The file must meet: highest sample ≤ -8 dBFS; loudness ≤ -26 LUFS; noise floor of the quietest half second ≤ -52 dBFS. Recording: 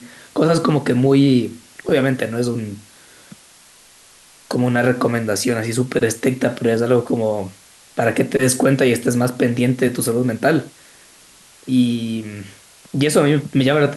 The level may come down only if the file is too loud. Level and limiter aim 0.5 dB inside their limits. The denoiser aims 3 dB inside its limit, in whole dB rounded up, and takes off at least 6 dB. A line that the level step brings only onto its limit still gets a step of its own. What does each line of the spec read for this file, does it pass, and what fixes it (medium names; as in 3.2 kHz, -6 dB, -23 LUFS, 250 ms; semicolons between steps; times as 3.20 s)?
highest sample -4.5 dBFS: fail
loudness -18.0 LUFS: fail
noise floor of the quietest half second -48 dBFS: fail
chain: trim -8.5 dB